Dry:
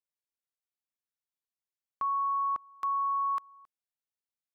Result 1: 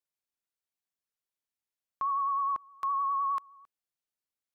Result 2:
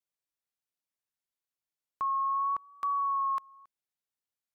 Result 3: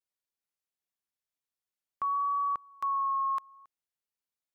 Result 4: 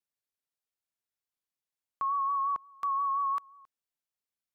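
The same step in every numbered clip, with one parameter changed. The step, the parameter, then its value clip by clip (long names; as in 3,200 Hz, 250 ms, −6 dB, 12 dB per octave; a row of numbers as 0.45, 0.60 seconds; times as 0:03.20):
pitch vibrato, speed: 9.7, 0.81, 0.53, 5.7 Hertz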